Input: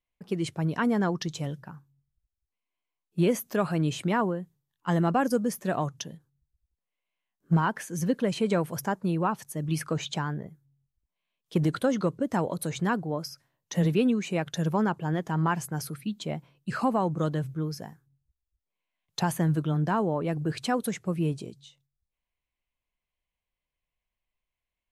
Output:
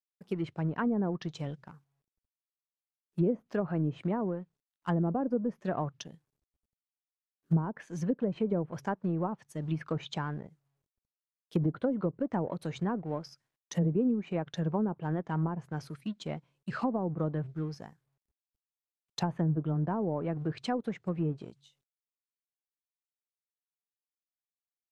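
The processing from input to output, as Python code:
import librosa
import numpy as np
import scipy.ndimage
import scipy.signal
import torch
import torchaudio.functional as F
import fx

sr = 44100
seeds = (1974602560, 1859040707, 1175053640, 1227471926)

y = fx.law_mismatch(x, sr, coded='A')
y = fx.env_lowpass_down(y, sr, base_hz=570.0, full_db=-21.5)
y = F.gain(torch.from_numpy(y), -3.0).numpy()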